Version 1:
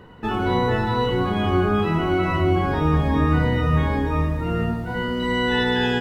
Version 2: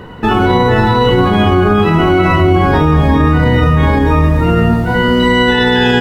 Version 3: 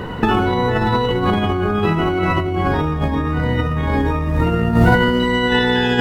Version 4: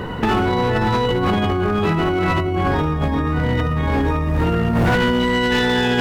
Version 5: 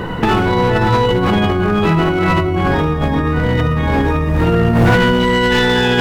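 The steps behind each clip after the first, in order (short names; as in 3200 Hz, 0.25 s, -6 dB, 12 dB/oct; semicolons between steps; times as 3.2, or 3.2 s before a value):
maximiser +15 dB; gain -1 dB
negative-ratio compressor -14 dBFS, ratio -0.5; gain -1 dB
hard clip -13 dBFS, distortion -12 dB
reverb RT60 0.70 s, pre-delay 6 ms, DRR 11 dB; gain +4 dB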